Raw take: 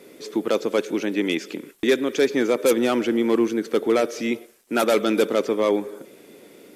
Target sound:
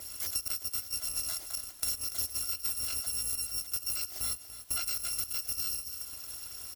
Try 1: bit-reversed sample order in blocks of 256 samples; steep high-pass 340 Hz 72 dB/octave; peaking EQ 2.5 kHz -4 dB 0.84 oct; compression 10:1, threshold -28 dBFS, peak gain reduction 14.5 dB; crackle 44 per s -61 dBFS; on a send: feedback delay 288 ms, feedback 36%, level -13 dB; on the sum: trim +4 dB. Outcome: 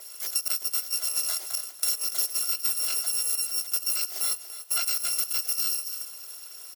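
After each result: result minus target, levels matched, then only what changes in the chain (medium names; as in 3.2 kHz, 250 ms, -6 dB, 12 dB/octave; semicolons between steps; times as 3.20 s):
250 Hz band -15.0 dB; compression: peak gain reduction -6.5 dB
remove: steep high-pass 340 Hz 72 dB/octave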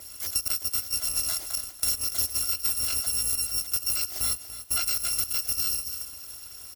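compression: peak gain reduction -7 dB
change: compression 10:1, threshold -35.5 dBFS, peak gain reduction 21.5 dB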